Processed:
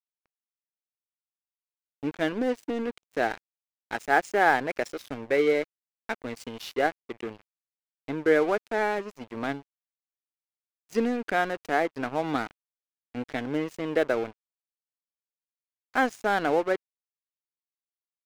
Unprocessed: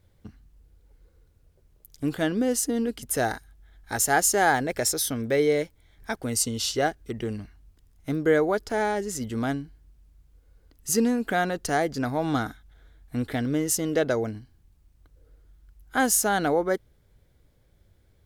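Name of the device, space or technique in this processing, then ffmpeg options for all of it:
pocket radio on a weak battery: -af "highpass=250,lowpass=3.1k,aeval=exprs='sgn(val(0))*max(abs(val(0))-0.0141,0)':c=same,equalizer=f=2.4k:t=o:w=0.45:g=4,volume=1dB"

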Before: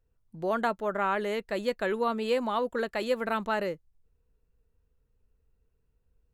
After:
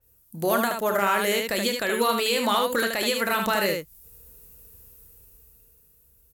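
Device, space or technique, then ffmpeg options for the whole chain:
FM broadcast chain: -filter_complex "[0:a]highpass=41,dynaudnorm=f=200:g=13:m=11dB,acrossover=split=1400|7200[a][b][c];[a]acompressor=threshold=-27dB:ratio=4[d];[b]acompressor=threshold=-28dB:ratio=4[e];[c]acompressor=threshold=-59dB:ratio=4[f];[d][e][f]amix=inputs=3:normalize=0,aemphasis=mode=production:type=50fm,alimiter=limit=-20.5dB:level=0:latency=1:release=269,asoftclip=type=hard:threshold=-22dB,lowpass=f=15k:w=0.5412,lowpass=f=15k:w=1.3066,aemphasis=mode=production:type=50fm,asettb=1/sr,asplit=3[g][h][i];[g]atrim=end=0.934[j];[h]atrim=start=0.93:end=1.49,asetpts=PTS-STARTPTS,afade=t=in:d=0.004:c=qsin,afade=t=out:st=0.556:d=0.004:c=qsin,highpass=99[k];[i]atrim=start=1.486[l];[j][k]acrossfade=d=0.004:c1=hsin:c2=qsin[m];[m][l]acrossfade=d=0.004:c1=qsin:c2=hsin,aecho=1:1:30|75:0.299|0.596,adynamicequalizer=threshold=0.00562:dfrequency=4200:dqfactor=0.7:tfrequency=4200:tqfactor=0.7:attack=5:release=100:ratio=0.375:range=2:mode=cutabove:tftype=highshelf,volume=6.5dB"

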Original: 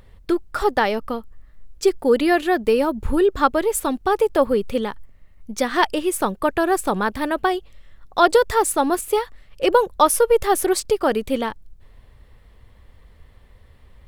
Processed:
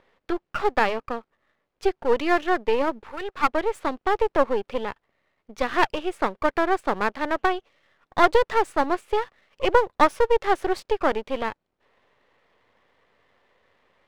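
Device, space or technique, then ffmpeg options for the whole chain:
crystal radio: -filter_complex "[0:a]asettb=1/sr,asplit=3[a][b][c];[a]atrim=end=3.044[d];[b]atrim=start=3.04:end=3.48,asetpts=PTS-STARTPTS,afade=t=in:d=0.004:c=qsin,afade=t=out:st=0.436:d=0.004:c=qsin,highpass=730[e];[c]atrim=start=3.476[f];[d][e]acrossfade=d=0.004:c1=hsin:c2=qsin[g];[g][f]acrossfade=d=0.004:c1=qsin:c2=hsin,highpass=400,lowpass=2.9k,aeval=exprs='if(lt(val(0),0),0.251*val(0),val(0))':c=same,volume=1dB"

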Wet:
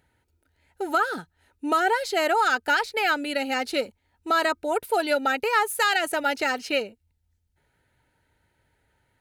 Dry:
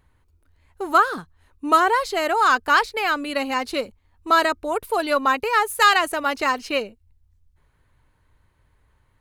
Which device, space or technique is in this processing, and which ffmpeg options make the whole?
PA system with an anti-feedback notch: -af "highpass=f=190:p=1,asuperstop=centerf=1100:order=8:qfactor=4.2,alimiter=limit=-13dB:level=0:latency=1:release=148"

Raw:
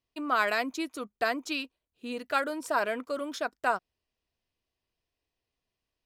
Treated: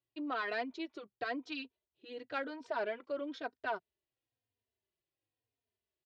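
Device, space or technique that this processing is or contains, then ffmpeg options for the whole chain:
barber-pole flanger into a guitar amplifier: -filter_complex "[0:a]asplit=2[a][b];[b]adelay=3.1,afreqshift=-0.99[c];[a][c]amix=inputs=2:normalize=1,asoftclip=type=tanh:threshold=-21dB,highpass=84,equalizer=f=110:t=q:w=4:g=9,equalizer=f=190:t=q:w=4:g=-7,equalizer=f=390:t=q:w=4:g=5,equalizer=f=1.2k:t=q:w=4:g=-6,equalizer=f=2.5k:t=q:w=4:g=-3,lowpass=f=4.3k:w=0.5412,lowpass=f=4.3k:w=1.3066,volume=-4dB"

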